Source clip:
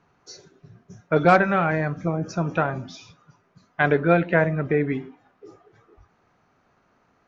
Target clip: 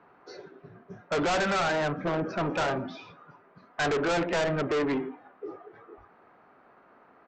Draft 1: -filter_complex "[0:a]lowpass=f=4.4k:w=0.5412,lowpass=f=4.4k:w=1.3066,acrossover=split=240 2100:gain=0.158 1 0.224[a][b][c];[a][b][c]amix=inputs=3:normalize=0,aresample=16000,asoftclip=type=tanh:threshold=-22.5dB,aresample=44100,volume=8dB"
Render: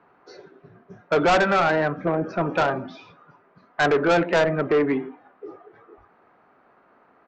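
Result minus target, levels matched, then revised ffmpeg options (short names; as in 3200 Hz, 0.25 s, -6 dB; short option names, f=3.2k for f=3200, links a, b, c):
soft clip: distortion -5 dB
-filter_complex "[0:a]lowpass=f=4.4k:w=0.5412,lowpass=f=4.4k:w=1.3066,acrossover=split=240 2100:gain=0.158 1 0.224[a][b][c];[a][b][c]amix=inputs=3:normalize=0,aresample=16000,asoftclip=type=tanh:threshold=-32.5dB,aresample=44100,volume=8dB"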